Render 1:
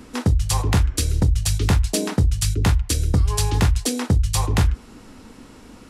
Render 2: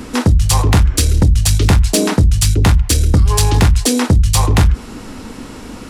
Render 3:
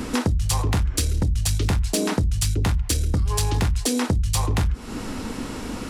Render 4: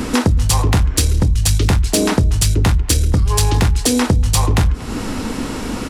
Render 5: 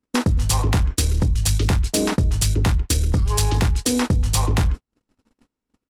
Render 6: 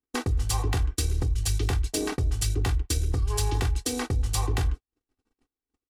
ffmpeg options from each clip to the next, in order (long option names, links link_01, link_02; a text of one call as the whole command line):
ffmpeg -i in.wav -filter_complex "[0:a]asplit=2[link_01][link_02];[link_02]alimiter=limit=-21.5dB:level=0:latency=1,volume=-1.5dB[link_03];[link_01][link_03]amix=inputs=2:normalize=0,asoftclip=type=tanh:threshold=-11.5dB,volume=7.5dB" out.wav
ffmpeg -i in.wav -af "acompressor=threshold=-21dB:ratio=4" out.wav
ffmpeg -i in.wav -filter_complex "[0:a]asplit=2[link_01][link_02];[link_02]adelay=236,lowpass=frequency=2800:poles=1,volume=-18.5dB,asplit=2[link_03][link_04];[link_04]adelay=236,lowpass=frequency=2800:poles=1,volume=0.49,asplit=2[link_05][link_06];[link_06]adelay=236,lowpass=frequency=2800:poles=1,volume=0.49,asplit=2[link_07][link_08];[link_08]adelay=236,lowpass=frequency=2800:poles=1,volume=0.49[link_09];[link_01][link_03][link_05][link_07][link_09]amix=inputs=5:normalize=0,volume=7.5dB" out.wav
ffmpeg -i in.wav -af "agate=range=-56dB:threshold=-16dB:ratio=16:detection=peak,volume=-4.5dB" out.wav
ffmpeg -i in.wav -af "aeval=exprs='0.398*(cos(1*acos(clip(val(0)/0.398,-1,1)))-cos(1*PI/2))+0.0224*(cos(7*acos(clip(val(0)/0.398,-1,1)))-cos(7*PI/2))':channel_layout=same,aecho=1:1:2.6:0.64,volume=-9dB" out.wav